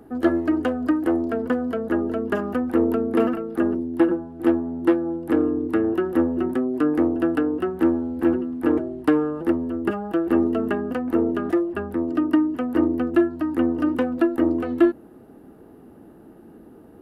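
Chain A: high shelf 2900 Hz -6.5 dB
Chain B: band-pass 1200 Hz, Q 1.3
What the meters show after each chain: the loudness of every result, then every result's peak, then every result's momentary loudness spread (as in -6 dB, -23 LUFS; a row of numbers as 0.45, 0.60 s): -22.5, -33.5 LUFS; -6.5, -15.0 dBFS; 4, 4 LU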